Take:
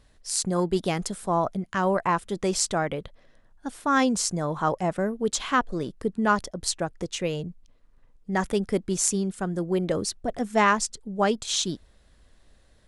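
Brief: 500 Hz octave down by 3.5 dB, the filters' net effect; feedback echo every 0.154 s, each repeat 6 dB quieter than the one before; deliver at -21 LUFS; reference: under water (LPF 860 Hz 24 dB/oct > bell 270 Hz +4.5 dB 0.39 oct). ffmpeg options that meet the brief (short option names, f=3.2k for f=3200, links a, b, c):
-af "lowpass=f=860:w=0.5412,lowpass=f=860:w=1.3066,equalizer=f=270:t=o:w=0.39:g=4.5,equalizer=f=500:t=o:g=-5,aecho=1:1:154|308|462|616|770|924:0.501|0.251|0.125|0.0626|0.0313|0.0157,volume=7.5dB"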